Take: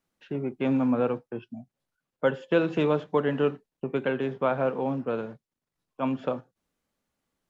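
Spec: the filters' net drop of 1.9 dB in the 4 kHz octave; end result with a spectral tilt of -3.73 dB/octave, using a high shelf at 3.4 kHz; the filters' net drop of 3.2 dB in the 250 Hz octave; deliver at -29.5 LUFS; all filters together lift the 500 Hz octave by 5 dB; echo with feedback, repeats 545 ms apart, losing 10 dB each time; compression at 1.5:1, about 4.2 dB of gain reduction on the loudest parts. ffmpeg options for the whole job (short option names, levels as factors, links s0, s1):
-af "equalizer=f=250:t=o:g=-6,equalizer=f=500:t=o:g=7,highshelf=f=3400:g=7.5,equalizer=f=4000:t=o:g=-8,acompressor=threshold=0.0631:ratio=1.5,aecho=1:1:545|1090|1635|2180:0.316|0.101|0.0324|0.0104,volume=0.794"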